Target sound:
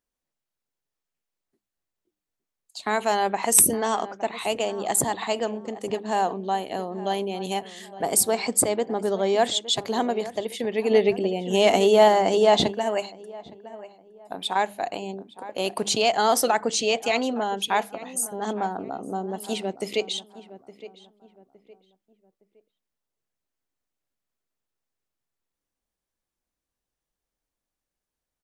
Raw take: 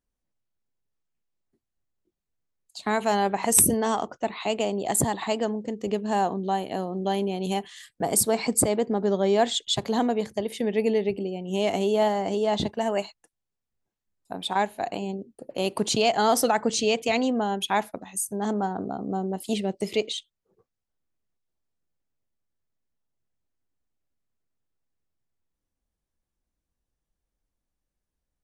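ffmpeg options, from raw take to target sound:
-filter_complex "[0:a]lowshelf=f=220:g=-11.5,asplit=2[a][b];[b]adelay=864,lowpass=f=1.7k:p=1,volume=-15dB,asplit=2[c][d];[d]adelay=864,lowpass=f=1.7k:p=1,volume=0.35,asplit=2[e][f];[f]adelay=864,lowpass=f=1.7k:p=1,volume=0.35[g];[a][c][e][g]amix=inputs=4:normalize=0,asplit=3[h][i][j];[h]afade=t=out:st=10.9:d=0.02[k];[i]acontrast=73,afade=t=in:st=10.9:d=0.02,afade=t=out:st=12.71:d=0.02[l];[j]afade=t=in:st=12.71:d=0.02[m];[k][l][m]amix=inputs=3:normalize=0,bandreject=f=101.3:t=h:w=4,bandreject=f=202.6:t=h:w=4,bandreject=f=303.9:t=h:w=4,volume=2dB"

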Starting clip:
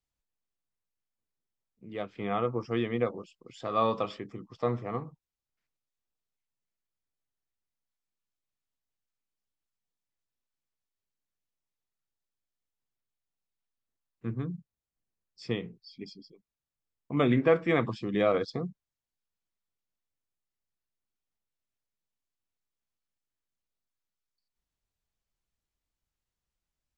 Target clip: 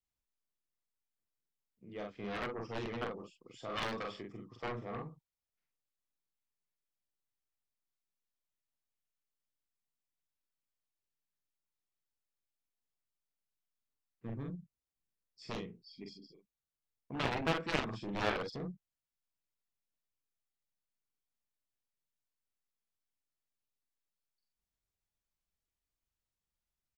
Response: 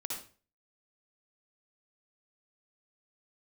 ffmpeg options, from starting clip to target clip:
-filter_complex "[0:a]asplit=2[a][b];[b]adelay=44,volume=-3dB[c];[a][c]amix=inputs=2:normalize=0,aeval=exprs='clip(val(0),-1,0.126)':c=same,aeval=exprs='0.299*(cos(1*acos(clip(val(0)/0.299,-1,1)))-cos(1*PI/2))+0.0841*(cos(3*acos(clip(val(0)/0.299,-1,1)))-cos(3*PI/2))+0.015*(cos(6*acos(clip(val(0)/0.299,-1,1)))-cos(6*PI/2))+0.0376*(cos(7*acos(clip(val(0)/0.299,-1,1)))-cos(7*PI/2))+0.00422*(cos(8*acos(clip(val(0)/0.299,-1,1)))-cos(8*PI/2))':c=same,volume=-4dB"

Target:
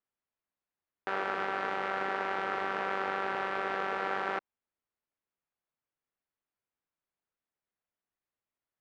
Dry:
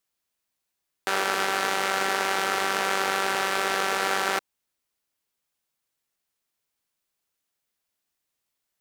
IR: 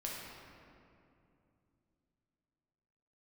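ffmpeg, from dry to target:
-af "lowpass=1.9k,volume=-6dB"

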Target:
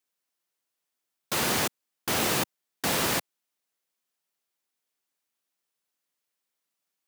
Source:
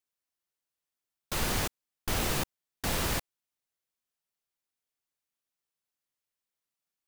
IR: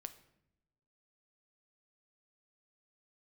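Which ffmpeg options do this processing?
-af "highpass=170,volume=5.5dB"

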